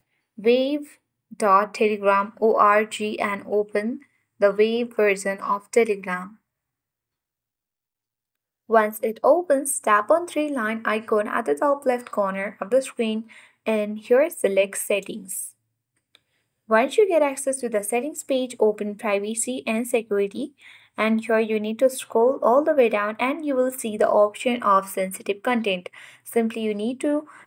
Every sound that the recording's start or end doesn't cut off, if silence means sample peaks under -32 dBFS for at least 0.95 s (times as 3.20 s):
8.70–15.49 s